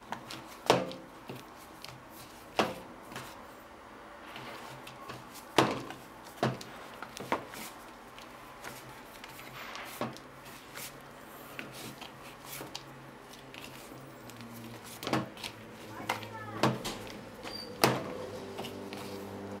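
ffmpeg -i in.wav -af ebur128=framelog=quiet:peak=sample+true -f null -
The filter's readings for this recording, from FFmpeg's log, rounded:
Integrated loudness:
  I:         -37.8 LUFS
  Threshold: -48.3 LUFS
Loudness range:
  LRA:         9.9 LU
  Threshold: -58.8 LUFS
  LRA low:   -45.1 LUFS
  LRA high:  -35.1 LUFS
Sample peak:
  Peak:       -9.0 dBFS
True peak:
  Peak:       -8.7 dBFS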